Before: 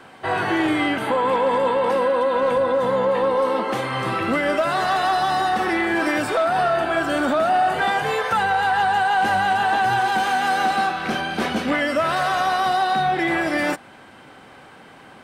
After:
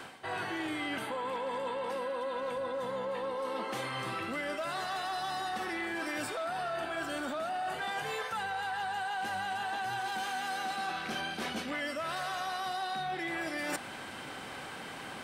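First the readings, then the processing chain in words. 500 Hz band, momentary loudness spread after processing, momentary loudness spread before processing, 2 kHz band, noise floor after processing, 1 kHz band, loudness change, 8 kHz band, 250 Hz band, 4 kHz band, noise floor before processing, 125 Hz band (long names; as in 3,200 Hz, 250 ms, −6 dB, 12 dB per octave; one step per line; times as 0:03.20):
−16.0 dB, 2 LU, 4 LU, −13.5 dB, −44 dBFS, −16.0 dB, −15.5 dB, −7.5 dB, −16.0 dB, −10.5 dB, −45 dBFS, −15.5 dB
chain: high-shelf EQ 2,400 Hz +8.5 dB
reversed playback
downward compressor 6 to 1, threshold −35 dBFS, peak gain reduction 18.5 dB
reversed playback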